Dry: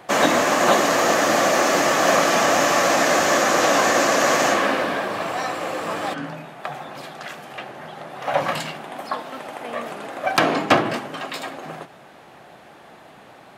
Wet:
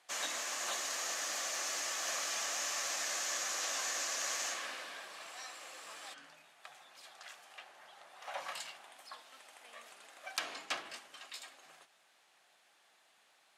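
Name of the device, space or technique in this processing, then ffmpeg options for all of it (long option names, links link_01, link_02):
piezo pickup straight into a mixer: -filter_complex "[0:a]lowpass=8600,aderivative,asettb=1/sr,asplit=3[link_01][link_02][link_03];[link_01]atrim=end=7.054[link_04];[link_02]atrim=start=7.05:end=8.92,asetpts=PTS-STARTPTS,afade=type=in:duration=0.004:curve=qsin,afade=type=out:start_time=1.866:duration=0.004:curve=qsin,equalizer=frequency=840:width_type=o:width=1.9:gain=6[link_05];[link_03]atrim=start=8.916[link_06];[link_04][link_05]acrossfade=duration=0.004:curve1=hsin:curve2=qsin[link_07];[link_07][link_06]acrossfade=duration=0.004:curve1=qsin:curve2=hsin,volume=-8dB"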